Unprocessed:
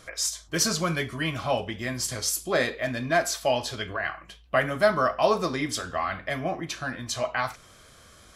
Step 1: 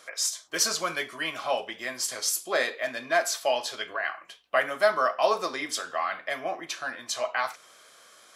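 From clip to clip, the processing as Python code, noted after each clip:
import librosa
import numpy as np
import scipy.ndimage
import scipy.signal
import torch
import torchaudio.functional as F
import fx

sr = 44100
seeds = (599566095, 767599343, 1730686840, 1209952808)

y = scipy.signal.sosfilt(scipy.signal.butter(2, 490.0, 'highpass', fs=sr, output='sos'), x)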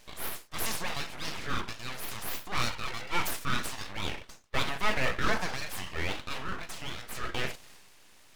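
y = fx.high_shelf(x, sr, hz=5400.0, db=-6.5)
y = np.abs(y)
y = fx.transient(y, sr, attack_db=-5, sustain_db=5)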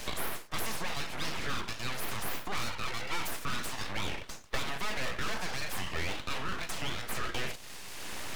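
y = 10.0 ** (-23.0 / 20.0) * np.tanh(x / 10.0 ** (-23.0 / 20.0))
y = fx.band_squash(y, sr, depth_pct=100)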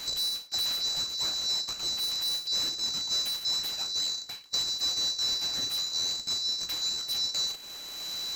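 y = fx.band_swap(x, sr, width_hz=4000)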